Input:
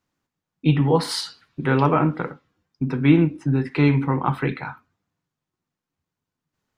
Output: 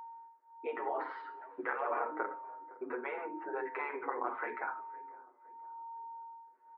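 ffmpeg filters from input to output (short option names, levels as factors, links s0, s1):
-filter_complex "[0:a]afftfilt=real='re*lt(hypot(re,im),0.355)':imag='im*lt(hypot(re,im),0.355)':win_size=1024:overlap=0.75,acompressor=threshold=0.00794:ratio=2.5,aeval=exprs='val(0)+0.00282*sin(2*PI*920*n/s)':c=same,asuperpass=centerf=810:order=8:qfactor=0.53,asplit=2[s0][s1];[s1]adelay=512,lowpass=f=1200:p=1,volume=0.1,asplit=2[s2][s3];[s3]adelay=512,lowpass=f=1200:p=1,volume=0.5,asplit=2[s4][s5];[s5]adelay=512,lowpass=f=1200:p=1,volume=0.5,asplit=2[s6][s7];[s7]adelay=512,lowpass=f=1200:p=1,volume=0.5[s8];[s0][s2][s4][s6][s8]amix=inputs=5:normalize=0,asplit=2[s9][s10];[s10]adelay=7.3,afreqshift=-0.81[s11];[s9][s11]amix=inputs=2:normalize=1,volume=2.51"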